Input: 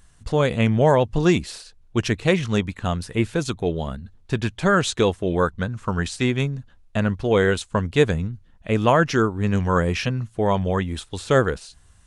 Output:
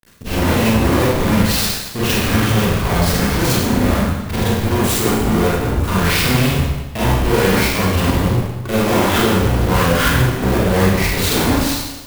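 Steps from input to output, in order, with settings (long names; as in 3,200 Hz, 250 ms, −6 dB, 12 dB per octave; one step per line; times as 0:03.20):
pitch shifter gated in a rhythm −9 semitones, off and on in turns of 241 ms
gain on a spectral selection 0:04.44–0:05.83, 460–7,100 Hz −17 dB
fuzz pedal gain 42 dB, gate −45 dBFS
four-comb reverb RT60 1.1 s, combs from 32 ms, DRR −9.5 dB
converter with an unsteady clock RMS 0.029 ms
level −9.5 dB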